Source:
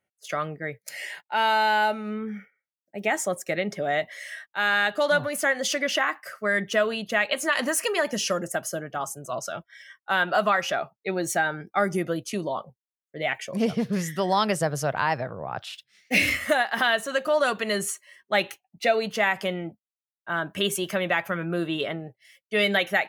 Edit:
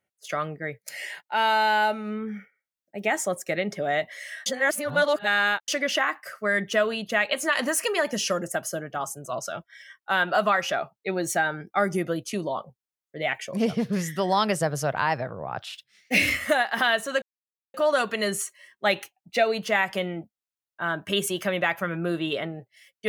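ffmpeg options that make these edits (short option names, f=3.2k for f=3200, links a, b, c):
-filter_complex "[0:a]asplit=4[a][b][c][d];[a]atrim=end=4.462[e];[b]atrim=start=4.458:end=5.682,asetpts=PTS-STARTPTS,areverse[f];[c]atrim=start=5.678:end=17.22,asetpts=PTS-STARTPTS,afade=t=out:st=11.538:d=0.004:c=hsin,apad=pad_dur=0.52[g];[d]atrim=start=17.22,asetpts=PTS-STARTPTS,afade=t=in:d=0.004:c=hsin[h];[e][f]acrossfade=d=0.004:c1=hsin:c2=hsin[i];[g][h]concat=n=2:v=0:a=1[j];[i][j]acrossfade=d=0.004:c1=hsin:c2=hsin"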